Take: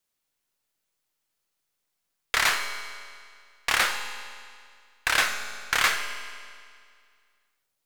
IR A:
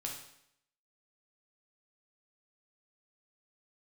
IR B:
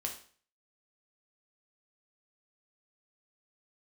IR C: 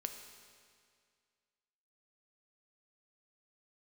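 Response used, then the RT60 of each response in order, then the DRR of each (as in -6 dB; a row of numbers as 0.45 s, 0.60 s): C; 0.75 s, 0.45 s, 2.1 s; -0.5 dB, 1.0 dB, 5.5 dB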